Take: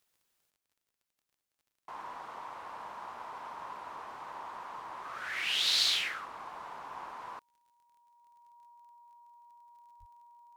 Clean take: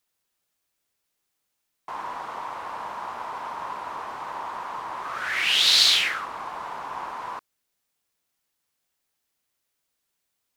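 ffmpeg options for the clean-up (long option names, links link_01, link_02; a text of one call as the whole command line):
ffmpeg -i in.wav -filter_complex "[0:a]adeclick=threshold=4,bandreject=frequency=950:width=30,asplit=3[link_01][link_02][link_03];[link_01]afade=type=out:start_time=9.99:duration=0.02[link_04];[link_02]highpass=frequency=140:width=0.5412,highpass=frequency=140:width=1.3066,afade=type=in:start_time=9.99:duration=0.02,afade=type=out:start_time=10.11:duration=0.02[link_05];[link_03]afade=type=in:start_time=10.11:duration=0.02[link_06];[link_04][link_05][link_06]amix=inputs=3:normalize=0,asetnsamples=nb_out_samples=441:pad=0,asendcmd='0.5 volume volume 10dB',volume=0dB" out.wav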